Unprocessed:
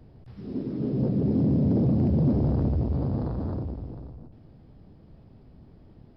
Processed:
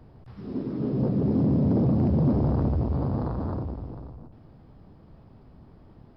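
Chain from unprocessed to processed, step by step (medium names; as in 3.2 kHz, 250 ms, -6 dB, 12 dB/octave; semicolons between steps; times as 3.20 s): peaking EQ 1.1 kHz +7.5 dB 1.2 oct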